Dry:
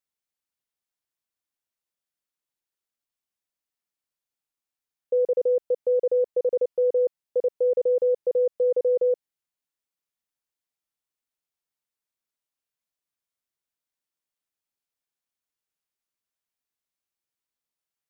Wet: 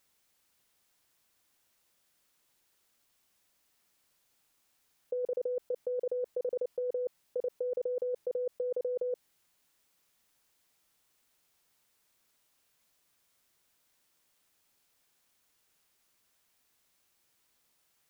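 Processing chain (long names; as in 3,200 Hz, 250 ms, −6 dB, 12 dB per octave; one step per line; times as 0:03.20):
compressor whose output falls as the input rises −35 dBFS, ratio −1
level +2.5 dB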